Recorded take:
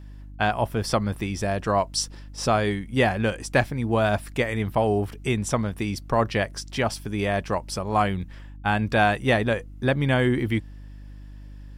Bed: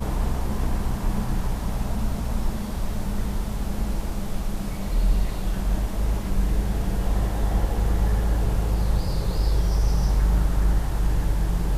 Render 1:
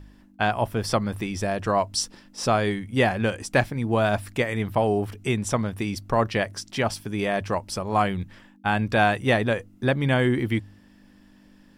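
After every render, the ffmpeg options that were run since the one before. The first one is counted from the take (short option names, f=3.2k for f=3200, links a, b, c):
-af "bandreject=f=50:t=h:w=4,bandreject=f=100:t=h:w=4,bandreject=f=150:t=h:w=4"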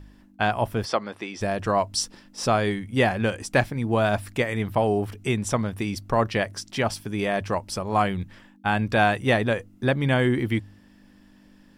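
-filter_complex "[0:a]asplit=3[a][b][c];[a]afade=t=out:st=0.84:d=0.02[d];[b]highpass=350,lowpass=5.4k,afade=t=in:st=0.84:d=0.02,afade=t=out:st=1.4:d=0.02[e];[c]afade=t=in:st=1.4:d=0.02[f];[d][e][f]amix=inputs=3:normalize=0"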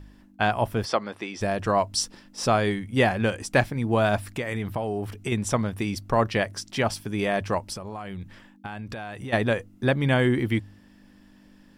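-filter_complex "[0:a]asettb=1/sr,asplit=3[a][b][c];[a]atrim=end=4.334[d];[b]atrim=start=4.33:end=5.32,asetpts=PTS-STARTPTS,afade=t=in:d=0.004:c=qsin,afade=t=out:st=0.986:d=0.004:c=qsin,acompressor=threshold=-24dB:ratio=6:attack=3.2:release=140:knee=1:detection=peak[e];[c]atrim=start=5.316[f];[d][e]acrossfade=d=0.004:c1=hsin:c2=qsin[g];[g][f]acrossfade=d=0.004:c1=qsin:c2=hsin,asplit=3[h][i][j];[h]afade=t=out:st=7.72:d=0.02[k];[i]acompressor=threshold=-31dB:ratio=20:attack=3.2:release=140:knee=1:detection=peak,afade=t=in:st=7.72:d=0.02,afade=t=out:st=9.32:d=0.02[l];[j]afade=t=in:st=9.32:d=0.02[m];[k][l][m]amix=inputs=3:normalize=0"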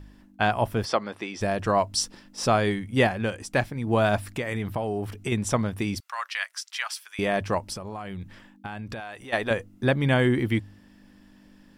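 -filter_complex "[0:a]asettb=1/sr,asplit=3[a][b][c];[a]atrim=end=6.004[d];[b]atrim=start=6:end=7.19,asetpts=PTS-STARTPTS,afade=t=in:d=0.004:c=qsin,afade=t=out:st=1.186:d=0.004:c=qsin,highpass=f=1.2k:w=0.5412,highpass=f=1.2k:w=1.3066[e];[c]atrim=start=7.186[f];[d][e]acrossfade=d=0.004:c1=hsin:c2=qsin[g];[g][f]acrossfade=d=0.004:c1=qsin:c2=hsin,asettb=1/sr,asplit=3[h][i][j];[h]atrim=end=9.004[k];[i]atrim=start=9:end=9.51,asetpts=PTS-STARTPTS,afade=t=in:d=0.004:c=qsin,afade=t=out:st=0.506:d=0.004:c=qsin,equalizer=f=130:w=0.58:g=-13.5[l];[j]atrim=start=9.506[m];[k][l]acrossfade=d=0.004:c1=hsin:c2=qsin[n];[n][m]acrossfade=d=0.004:c1=qsin:c2=hsin,asplit=3[o][p][q];[o]atrim=end=3.072[r];[p]atrim=start=3.068:end=3.872,asetpts=PTS-STARTPTS,volume=-3.5dB[s];[q]atrim=start=3.868[t];[r][s]acrossfade=d=0.004:c1=hsin:c2=hsin[u];[u][t]acrossfade=d=0.004:c1=hsin:c2=hsin"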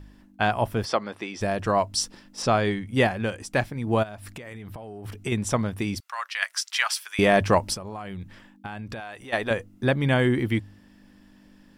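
-filter_complex "[0:a]asettb=1/sr,asplit=3[a][b][c];[a]atrim=end=2.424[d];[b]atrim=start=2.42:end=2.87,asetpts=PTS-STARTPTS,afade=t=in:d=0.004:c=qsin,afade=t=out:st=0.446:d=0.004:c=qsin,lowpass=7.1k[e];[c]atrim=start=2.866[f];[d][e]acrossfade=d=0.004:c1=hsin:c2=qsin[g];[g][f]acrossfade=d=0.004:c1=qsin:c2=hsin,asplit=3[h][i][j];[h]afade=t=out:st=4.02:d=0.02[k];[i]acompressor=threshold=-35dB:ratio=12:attack=3.2:release=140:knee=1:detection=peak,afade=t=in:st=4.02:d=0.02,afade=t=out:st=5.04:d=0.02[l];[j]afade=t=in:st=5.04:d=0.02[m];[k][l][m]amix=inputs=3:normalize=0,asettb=1/sr,asplit=3[n][o][p];[n]atrim=end=6.424[q];[o]atrim=start=6.42:end=7.75,asetpts=PTS-STARTPTS,afade=t=in:d=0.004:c=qsin,afade=t=out:st=1.326:d=0.004:c=qsin,acontrast=73[r];[p]atrim=start=7.746[s];[q][r]acrossfade=d=0.004:c1=hsin:c2=qsin[t];[t][s]acrossfade=d=0.004:c1=qsin:c2=hsin"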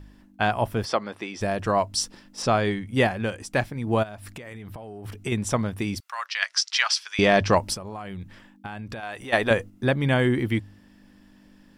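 -filter_complex "[0:a]asettb=1/sr,asplit=3[a][b][c];[a]atrim=end=6.264[d];[b]atrim=start=6.26:end=7.56,asetpts=PTS-STARTPTS,afade=t=in:d=0.004:c=qsin,afade=t=out:st=1.296:d=0.004:c=qsin,lowpass=f=5.3k:t=q:w=2.1[e];[c]atrim=start=7.556[f];[d][e]acrossfade=d=0.004:c1=hsin:c2=qsin[g];[g][f]acrossfade=d=0.004:c1=qsin:c2=hsin,asplit=3[h][i][j];[h]atrim=end=9.032[k];[i]atrim=start=9.028:end=9.702,asetpts=PTS-STARTPTS,volume=4.5dB[l];[j]atrim=start=9.698[m];[k][l]acrossfade=d=0.004:c1=hsin:c2=hsin[n];[n][m]acrossfade=d=0.004:c1=hsin:c2=hsin"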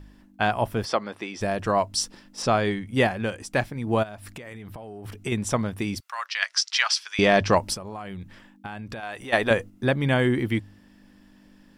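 -af "equalizer=f=91:w=1.5:g=-2"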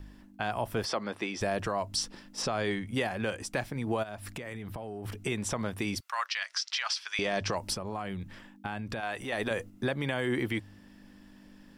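-filter_complex "[0:a]acrossover=split=360|4700[a][b][c];[a]acompressor=threshold=-33dB:ratio=4[d];[b]acompressor=threshold=-24dB:ratio=4[e];[c]acompressor=threshold=-36dB:ratio=4[f];[d][e][f]amix=inputs=3:normalize=0,alimiter=limit=-20dB:level=0:latency=1:release=67"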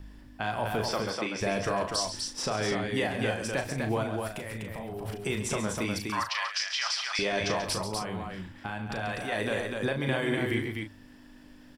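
-filter_complex "[0:a]asplit=2[a][b];[b]adelay=37,volume=-7.5dB[c];[a][c]amix=inputs=2:normalize=0,aecho=1:1:34.99|137|247.8:0.251|0.316|0.631"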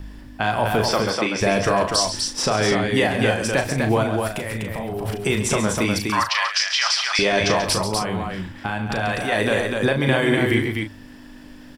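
-af "volume=10dB"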